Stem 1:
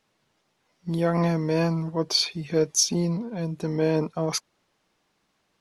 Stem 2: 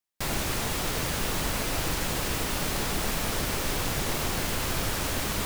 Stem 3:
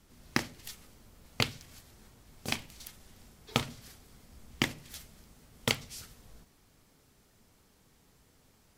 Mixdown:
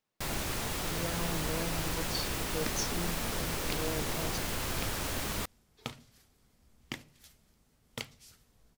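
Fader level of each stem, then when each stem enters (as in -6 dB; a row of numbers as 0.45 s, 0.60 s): -15.0 dB, -5.5 dB, -11.0 dB; 0.00 s, 0.00 s, 2.30 s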